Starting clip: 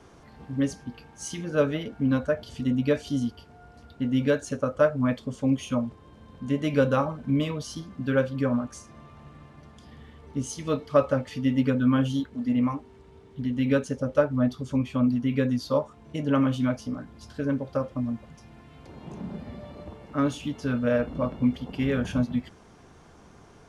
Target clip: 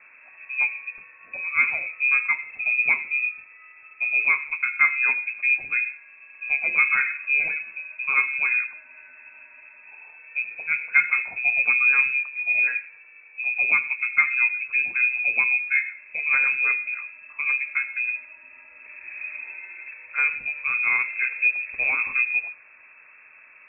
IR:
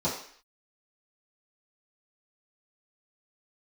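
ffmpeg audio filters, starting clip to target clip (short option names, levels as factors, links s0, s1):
-filter_complex "[0:a]asplit=2[s0][s1];[1:a]atrim=start_sample=2205,adelay=74[s2];[s1][s2]afir=irnorm=-1:irlink=0,volume=0.0531[s3];[s0][s3]amix=inputs=2:normalize=0,lowpass=f=2300:t=q:w=0.5098,lowpass=f=2300:t=q:w=0.6013,lowpass=f=2300:t=q:w=0.9,lowpass=f=2300:t=q:w=2.563,afreqshift=-2700,volume=1.19"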